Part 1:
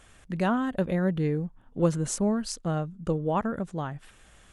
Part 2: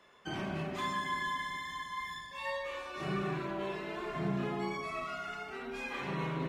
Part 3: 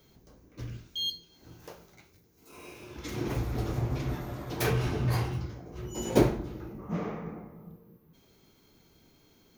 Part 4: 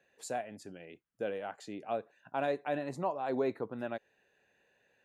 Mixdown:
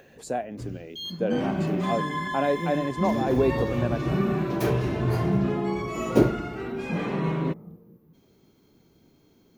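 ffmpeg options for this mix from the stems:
-filter_complex "[0:a]bandpass=f=220:t=q:w=2.2:csg=0,adelay=800,volume=-10dB[a];[1:a]adelay=1050,volume=1.5dB[b];[2:a]volume=-4.5dB[c];[3:a]acompressor=mode=upward:threshold=-51dB:ratio=2.5,volume=2dB[d];[a][b][c][d]amix=inputs=4:normalize=0,equalizer=f=250:w=0.37:g=9"

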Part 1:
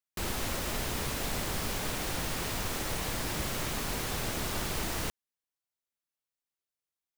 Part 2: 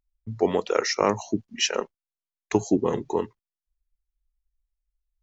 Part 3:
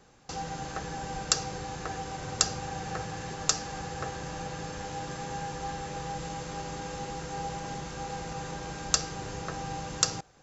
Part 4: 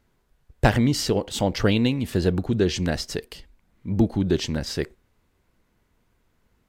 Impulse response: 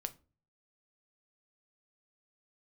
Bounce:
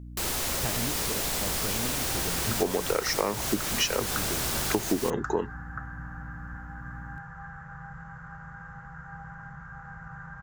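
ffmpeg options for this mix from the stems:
-filter_complex "[0:a]bass=f=250:g=-6,treble=f=4k:g=6,aeval=exprs='val(0)+0.00708*(sin(2*PI*60*n/s)+sin(2*PI*2*60*n/s)/2+sin(2*PI*3*60*n/s)/3+sin(2*PI*4*60*n/s)/4+sin(2*PI*5*60*n/s)/5)':c=same,volume=2.5dB[a];[1:a]adelay=2200,volume=2dB[b];[2:a]firequalizer=gain_entry='entry(160,0);entry(330,-29);entry(670,-11);entry(1500,10);entry(2400,-21);entry(3900,-30);entry(10000,-24)':delay=0.05:min_phase=1,adelay=1750,volume=-3dB[c];[3:a]volume=-15.5dB[d];[a][b][c][d]amix=inputs=4:normalize=0,acompressor=threshold=-22dB:ratio=10"

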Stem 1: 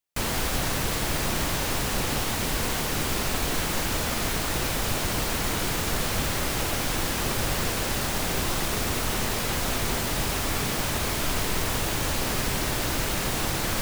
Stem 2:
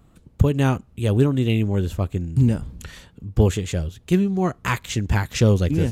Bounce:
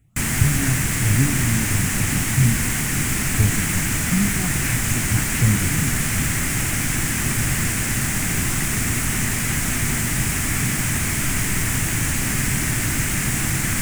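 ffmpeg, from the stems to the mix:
-filter_complex "[0:a]volume=2.5dB[a];[1:a]asplit=2[b][c];[c]afreqshift=3[d];[b][d]amix=inputs=2:normalize=1,volume=-6dB[e];[a][e]amix=inputs=2:normalize=0,equalizer=f=125:t=o:w=1:g=8,equalizer=f=250:t=o:w=1:g=5,equalizer=f=500:t=o:w=1:g=-11,equalizer=f=1k:t=o:w=1:g=-5,equalizer=f=2k:t=o:w=1:g=9,equalizer=f=4k:t=o:w=1:g=-10,equalizer=f=8k:t=o:w=1:g=10"

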